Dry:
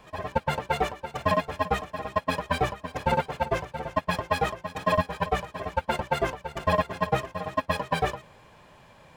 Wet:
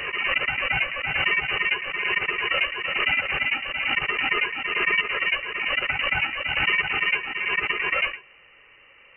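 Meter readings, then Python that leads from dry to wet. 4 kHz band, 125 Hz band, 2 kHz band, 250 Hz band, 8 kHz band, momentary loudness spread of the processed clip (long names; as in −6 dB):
+11.5 dB, −10.0 dB, +13.0 dB, −8.0 dB, below −25 dB, 3 LU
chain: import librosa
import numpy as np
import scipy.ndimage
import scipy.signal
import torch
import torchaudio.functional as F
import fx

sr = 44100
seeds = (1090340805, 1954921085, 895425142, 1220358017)

y = fx.freq_invert(x, sr, carrier_hz=2900)
y = fx.pre_swell(y, sr, db_per_s=29.0)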